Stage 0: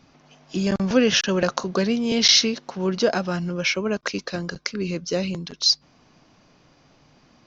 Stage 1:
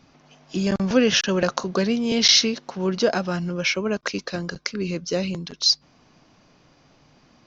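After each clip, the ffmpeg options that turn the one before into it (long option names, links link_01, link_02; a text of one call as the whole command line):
ffmpeg -i in.wav -af anull out.wav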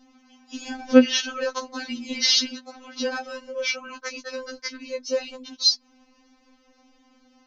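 ffmpeg -i in.wav -af "afftfilt=real='re*3.46*eq(mod(b,12),0)':imag='im*3.46*eq(mod(b,12),0)':win_size=2048:overlap=0.75,volume=-1dB" out.wav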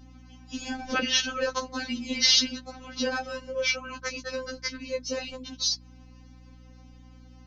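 ffmpeg -i in.wav -af "afftfilt=real='re*lt(hypot(re,im),0.891)':imag='im*lt(hypot(re,im),0.891)':win_size=1024:overlap=0.75,aeval=exprs='val(0)+0.00355*(sin(2*PI*60*n/s)+sin(2*PI*2*60*n/s)/2+sin(2*PI*3*60*n/s)/3+sin(2*PI*4*60*n/s)/4+sin(2*PI*5*60*n/s)/5)':channel_layout=same" out.wav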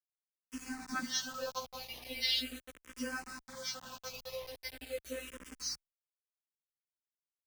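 ffmpeg -i in.wav -filter_complex "[0:a]acrusher=bits=5:mix=0:aa=0.000001,asplit=2[link_01][link_02];[link_02]afreqshift=-0.4[link_03];[link_01][link_03]amix=inputs=2:normalize=1,volume=-8dB" out.wav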